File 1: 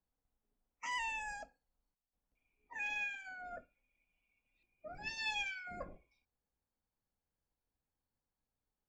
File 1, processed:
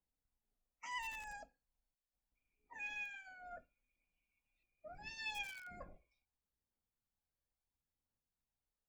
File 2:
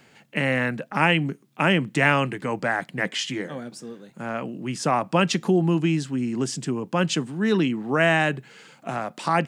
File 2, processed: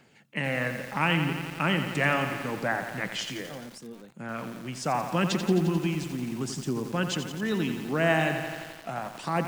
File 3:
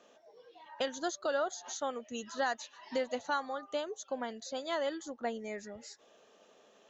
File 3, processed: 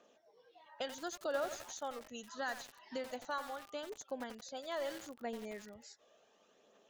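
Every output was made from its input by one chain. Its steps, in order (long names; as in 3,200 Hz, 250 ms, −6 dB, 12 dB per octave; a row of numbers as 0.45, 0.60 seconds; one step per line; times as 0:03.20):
phase shifter 0.74 Hz, delay 1.8 ms, feedback 32%
feedback echo at a low word length 87 ms, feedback 80%, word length 6 bits, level −8 dB
level −6.5 dB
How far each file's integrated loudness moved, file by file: −6.0, −5.0, −5.5 LU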